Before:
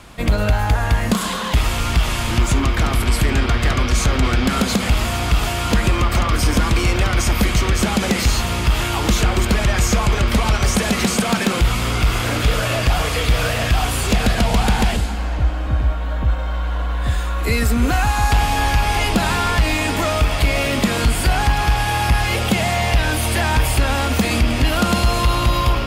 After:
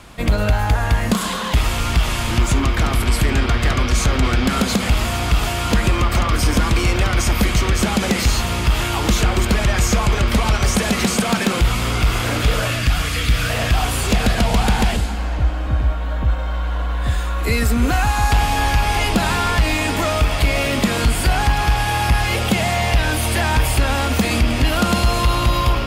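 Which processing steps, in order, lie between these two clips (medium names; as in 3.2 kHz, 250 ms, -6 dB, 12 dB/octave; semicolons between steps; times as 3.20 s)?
12.70–13.50 s: high-order bell 630 Hz -8.5 dB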